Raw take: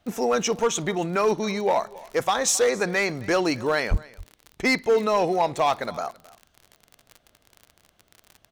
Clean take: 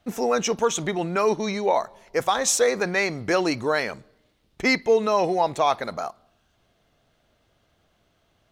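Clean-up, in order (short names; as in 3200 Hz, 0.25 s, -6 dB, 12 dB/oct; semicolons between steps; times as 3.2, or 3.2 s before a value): clip repair -14.5 dBFS; de-click; 3.9–4.02 HPF 140 Hz 24 dB/oct; inverse comb 0.268 s -22 dB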